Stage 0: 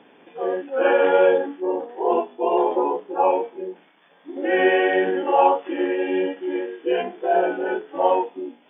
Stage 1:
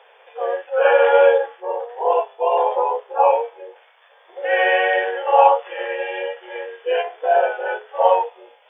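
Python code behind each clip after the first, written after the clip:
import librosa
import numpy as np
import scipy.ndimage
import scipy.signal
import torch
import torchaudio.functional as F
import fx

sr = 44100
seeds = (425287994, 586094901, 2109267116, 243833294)

y = scipy.signal.sosfilt(scipy.signal.ellip(4, 1.0, 40, 480.0, 'highpass', fs=sr, output='sos'), x)
y = y * 10.0 ** (4.5 / 20.0)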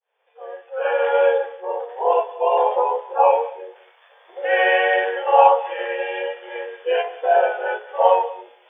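y = fx.fade_in_head(x, sr, length_s=1.97)
y = y + 10.0 ** (-18.0 / 20.0) * np.pad(y, (int(187 * sr / 1000.0), 0))[:len(y)]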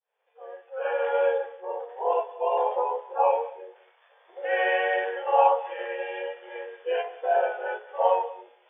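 y = fx.air_absorb(x, sr, metres=140.0)
y = y * 10.0 ** (-6.5 / 20.0)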